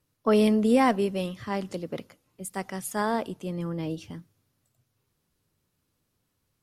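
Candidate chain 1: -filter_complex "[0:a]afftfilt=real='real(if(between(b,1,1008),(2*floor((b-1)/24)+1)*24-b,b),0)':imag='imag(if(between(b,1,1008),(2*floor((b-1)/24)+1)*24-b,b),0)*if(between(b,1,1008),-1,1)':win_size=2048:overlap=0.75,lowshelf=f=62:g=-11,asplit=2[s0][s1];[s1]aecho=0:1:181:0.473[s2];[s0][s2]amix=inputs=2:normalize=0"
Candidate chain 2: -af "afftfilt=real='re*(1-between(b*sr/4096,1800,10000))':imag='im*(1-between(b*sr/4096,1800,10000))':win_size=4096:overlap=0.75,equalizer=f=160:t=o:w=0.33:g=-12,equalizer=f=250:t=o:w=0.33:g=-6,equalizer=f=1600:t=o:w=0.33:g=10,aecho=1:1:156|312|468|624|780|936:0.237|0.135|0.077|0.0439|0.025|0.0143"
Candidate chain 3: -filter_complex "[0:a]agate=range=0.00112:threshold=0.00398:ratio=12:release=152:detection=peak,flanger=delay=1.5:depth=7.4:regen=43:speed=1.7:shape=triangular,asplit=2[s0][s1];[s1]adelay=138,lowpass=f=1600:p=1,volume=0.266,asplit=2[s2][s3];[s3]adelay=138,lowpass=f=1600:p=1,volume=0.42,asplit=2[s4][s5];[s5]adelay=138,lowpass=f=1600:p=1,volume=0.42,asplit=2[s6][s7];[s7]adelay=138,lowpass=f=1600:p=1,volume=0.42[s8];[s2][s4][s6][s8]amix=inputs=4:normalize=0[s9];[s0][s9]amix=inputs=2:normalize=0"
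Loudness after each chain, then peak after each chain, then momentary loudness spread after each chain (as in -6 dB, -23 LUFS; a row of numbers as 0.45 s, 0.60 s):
-27.0 LUFS, -28.5 LUFS, -30.5 LUFS; -10.0 dBFS, -10.5 dBFS, -11.5 dBFS; 17 LU, 16 LU, 16 LU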